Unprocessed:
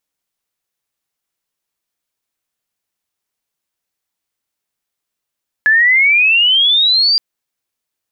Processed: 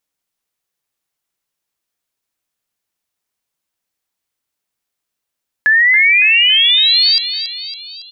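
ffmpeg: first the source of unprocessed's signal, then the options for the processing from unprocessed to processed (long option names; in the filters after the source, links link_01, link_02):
-f lavfi -i "aevalsrc='pow(10,(-7-2*t/1.52)/20)*sin(2*PI*1700*1.52/log(4800/1700)*(exp(log(4800/1700)*t/1.52)-1))':duration=1.52:sample_rate=44100"
-af "aecho=1:1:279|558|837|1116|1395|1674:0.316|0.168|0.0888|0.0471|0.025|0.0132"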